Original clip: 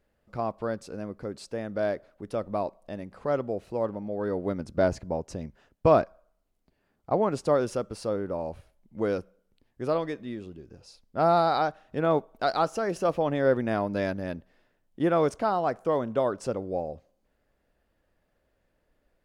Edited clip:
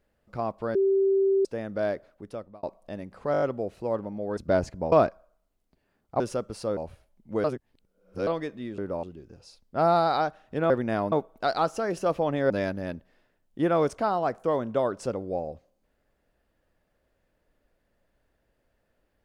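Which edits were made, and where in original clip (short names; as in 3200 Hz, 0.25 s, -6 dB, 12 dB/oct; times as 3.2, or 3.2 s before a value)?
0.75–1.45 bleep 389 Hz -19 dBFS
2.08–2.63 fade out
3.32 stutter 0.02 s, 6 plays
4.27–4.66 cut
5.21–5.87 cut
7.15–7.61 cut
8.18–8.43 move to 10.44
9.1–9.93 reverse
13.49–13.91 move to 12.11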